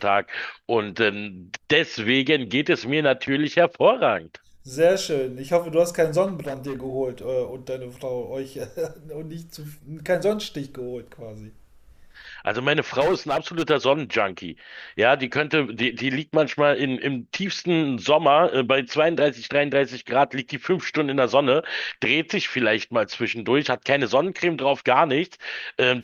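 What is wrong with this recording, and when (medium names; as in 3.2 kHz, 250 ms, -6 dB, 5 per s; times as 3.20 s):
6.26–6.83 s: clipped -25.5 dBFS
13.00–13.71 s: clipped -17 dBFS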